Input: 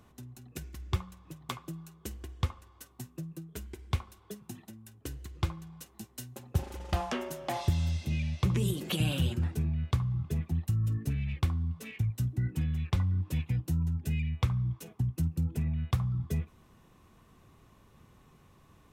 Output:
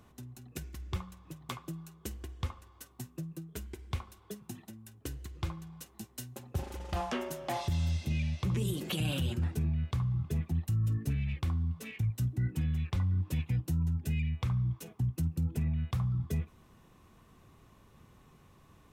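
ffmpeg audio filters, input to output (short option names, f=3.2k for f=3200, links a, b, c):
-af "alimiter=limit=-24dB:level=0:latency=1:release=23"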